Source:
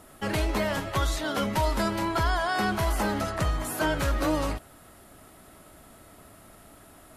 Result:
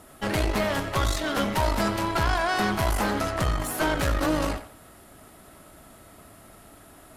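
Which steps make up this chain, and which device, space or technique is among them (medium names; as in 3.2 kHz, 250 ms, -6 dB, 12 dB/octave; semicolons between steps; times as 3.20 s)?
rockabilly slapback (valve stage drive 24 dB, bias 0.8; tape echo 92 ms, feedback 32%, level -11 dB, low-pass 4.6 kHz); trim +6.5 dB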